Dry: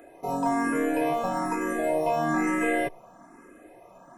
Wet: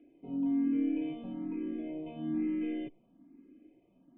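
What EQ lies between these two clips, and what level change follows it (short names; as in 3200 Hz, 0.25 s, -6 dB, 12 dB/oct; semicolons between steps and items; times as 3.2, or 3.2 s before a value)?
vocal tract filter i; 0.0 dB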